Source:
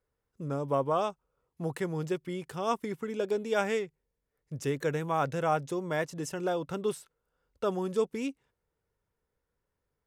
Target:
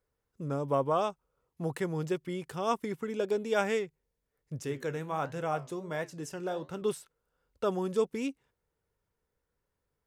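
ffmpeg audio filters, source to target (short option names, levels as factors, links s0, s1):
-filter_complex "[0:a]asettb=1/sr,asplit=3[s0][s1][s2];[s0]atrim=end=4.624[s3];[s1]atrim=start=4.62:end=6.82,asetpts=PTS-STARTPTS,afade=t=in:d=0.004:c=qsin,afade=t=out:st=2.196:d=0.004:c=qsin,flanger=delay=9.7:depth=7.8:regen=-72:speed=1.4:shape=triangular[s4];[s2]atrim=start=6.816[s5];[s3][s4]acrossfade=d=0.004:c1=hsin:c2=qsin[s6];[s6][s5]acrossfade=d=0.004:c1=qsin:c2=hsin"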